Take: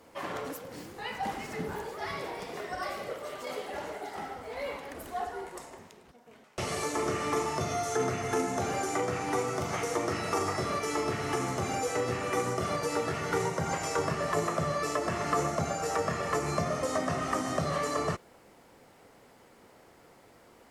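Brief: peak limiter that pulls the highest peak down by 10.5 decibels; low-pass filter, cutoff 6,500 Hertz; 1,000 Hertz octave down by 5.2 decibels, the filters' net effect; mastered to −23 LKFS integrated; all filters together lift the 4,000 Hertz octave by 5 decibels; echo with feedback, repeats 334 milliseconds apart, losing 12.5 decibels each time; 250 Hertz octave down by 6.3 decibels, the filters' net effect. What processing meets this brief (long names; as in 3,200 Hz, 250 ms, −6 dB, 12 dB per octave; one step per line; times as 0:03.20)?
low-pass filter 6,500 Hz
parametric band 250 Hz −9 dB
parametric band 1,000 Hz −7 dB
parametric band 4,000 Hz +8 dB
brickwall limiter −30 dBFS
repeating echo 334 ms, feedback 24%, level −12.5 dB
level +15.5 dB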